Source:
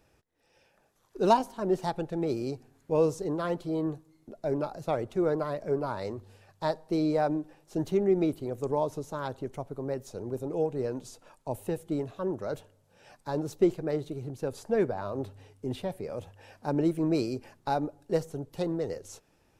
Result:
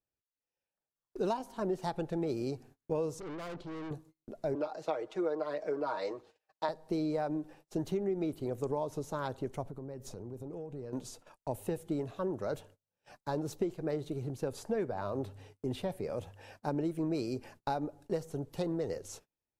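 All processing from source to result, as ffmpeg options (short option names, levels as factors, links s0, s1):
-filter_complex "[0:a]asettb=1/sr,asplit=3[s0][s1][s2];[s0]atrim=end=3.204[s3];[s1]atrim=start=3.2:end=3.91,asetpts=PTS-STARTPTS,afade=t=in:d=0.004:c=qsin,afade=t=out:st=0.706:d=0.004:c=qsin,lowpass=4800,aeval=exprs='(tanh(100*val(0)+0.4)-tanh(0.4))/100':c=same[s4];[s2]atrim=start=3.906[s5];[s3][s4]acrossfade=d=0.004:c1=hsin:c2=qsin[s6];[s6][s5]acrossfade=d=0.004:c1=qsin:c2=hsin,asettb=1/sr,asplit=3[s7][s8][s9];[s7]atrim=end=4.554[s10];[s8]atrim=start=4.55:end=6.69,asetpts=PTS-STARTPTS,afade=t=in:d=0.004:c=qsin,afade=t=out:st=2.136:d=0.004:c=qsin,acrossover=split=290 7000:gain=0.0631 1 0.158[s11][s12][s13];[s11][s12][s13]amix=inputs=3:normalize=0,aecho=1:1:6.4:0.77,atrim=end_sample=94374[s14];[s9]atrim=start=6.686[s15];[s10][s14]acrossfade=d=0.004:c1=hsin:c2=qsin[s16];[s16][s15]acrossfade=d=0.004:c1=qsin:c2=hsin,asettb=1/sr,asplit=3[s17][s18][s19];[s17]atrim=end=9.634[s20];[s18]atrim=start=9.63:end=10.93,asetpts=PTS-STARTPTS,afade=t=in:d=0.004:c=qsin,afade=t=out:st=1.296:d=0.004:c=qsin,lowshelf=f=320:g=8,acompressor=threshold=0.01:ratio=6:attack=3.2:release=140:knee=1:detection=peak[s21];[s19]atrim=start=10.926[s22];[s20][s21]acrossfade=d=0.004:c1=hsin:c2=qsin[s23];[s23][s22]acrossfade=d=0.004:c1=qsin:c2=hsin,agate=range=0.0316:threshold=0.002:ratio=16:detection=peak,acompressor=threshold=0.0316:ratio=6"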